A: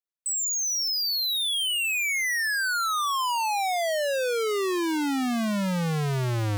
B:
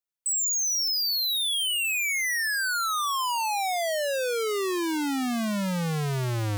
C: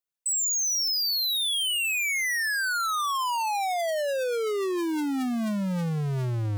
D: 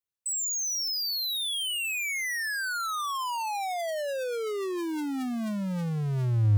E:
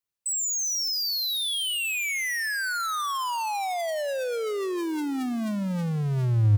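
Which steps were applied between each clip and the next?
high shelf 5900 Hz +4.5 dB; gain -1.5 dB
formant sharpening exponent 1.5
bell 100 Hz +13 dB 0.52 oct; gain -4 dB
feedback echo 0.165 s, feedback 59%, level -21.5 dB; gain +2.5 dB

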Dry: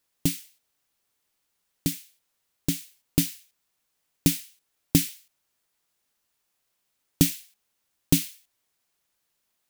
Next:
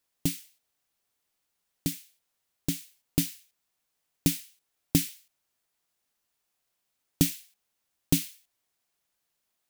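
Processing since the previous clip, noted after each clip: bell 710 Hz +3 dB 0.24 oct; gain -3.5 dB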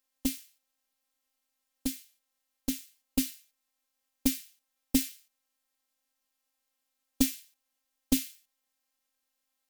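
robotiser 264 Hz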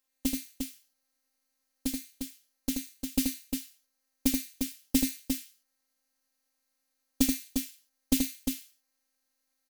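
tapped delay 80/352 ms -4.5/-5.5 dB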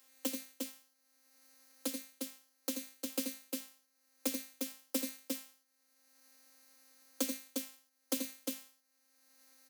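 half-wave rectifier; Chebyshev high-pass 210 Hz, order 10; three-band squash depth 70%; gain -4 dB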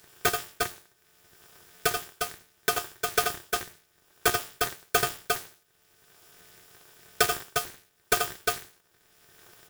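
in parallel at -8 dB: decimation with a swept rate 20×, swing 160% 1.5 Hz; on the sum: small resonant body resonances 600/850 Hz, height 13 dB, ringing for 45 ms; polarity switched at an audio rate 970 Hz; gain +8 dB

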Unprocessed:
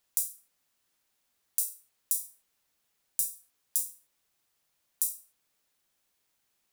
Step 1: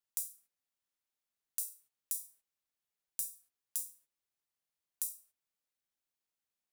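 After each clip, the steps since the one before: gate -56 dBFS, range -8 dB; gain -8 dB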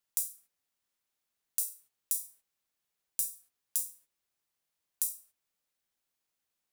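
short-mantissa float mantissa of 4-bit; gain +5.5 dB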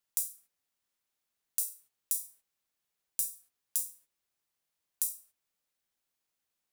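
nothing audible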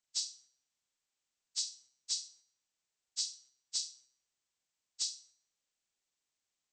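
nonlinear frequency compression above 1200 Hz 1.5:1; resonator 130 Hz, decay 0.59 s, harmonics all, mix 50%; gain +1.5 dB

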